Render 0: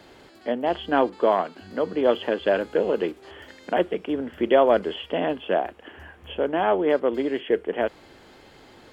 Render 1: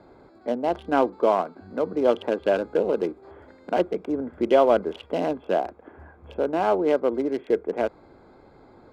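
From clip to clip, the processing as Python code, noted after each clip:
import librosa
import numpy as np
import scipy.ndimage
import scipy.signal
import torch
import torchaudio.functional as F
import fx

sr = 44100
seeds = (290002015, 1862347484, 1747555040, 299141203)

y = fx.wiener(x, sr, points=15)
y = fx.notch(y, sr, hz=1800.0, q=5.3)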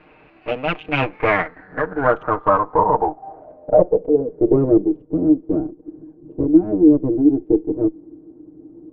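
y = fx.lower_of_two(x, sr, delay_ms=6.5)
y = fx.filter_sweep_lowpass(y, sr, from_hz=2600.0, to_hz=320.0, start_s=0.99, end_s=4.86, q=8.0)
y = y * 10.0 ** (2.0 / 20.0)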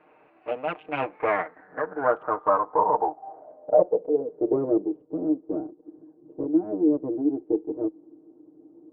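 y = fx.bandpass_q(x, sr, hz=740.0, q=0.77)
y = y * 10.0 ** (-4.5 / 20.0)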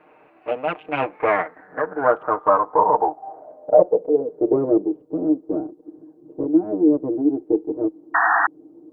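y = fx.spec_paint(x, sr, seeds[0], shape='noise', start_s=8.14, length_s=0.33, low_hz=670.0, high_hz=1900.0, level_db=-22.0)
y = y * 10.0 ** (5.0 / 20.0)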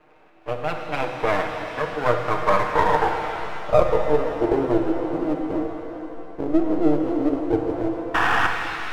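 y = np.where(x < 0.0, 10.0 ** (-12.0 / 20.0) * x, x)
y = fx.rev_shimmer(y, sr, seeds[1], rt60_s=2.7, semitones=7, shimmer_db=-8, drr_db=3.5)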